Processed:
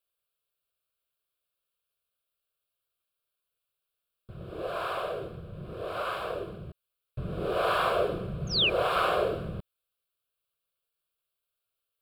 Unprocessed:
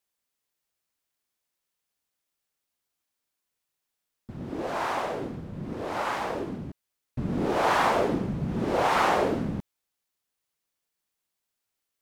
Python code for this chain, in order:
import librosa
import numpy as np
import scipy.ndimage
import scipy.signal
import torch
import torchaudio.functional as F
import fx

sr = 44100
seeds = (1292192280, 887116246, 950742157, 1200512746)

y = fx.spec_paint(x, sr, seeds[0], shape='fall', start_s=8.47, length_s=0.23, low_hz=2300.0, high_hz=6700.0, level_db=-23.0)
y = fx.fixed_phaser(y, sr, hz=1300.0, stages=8)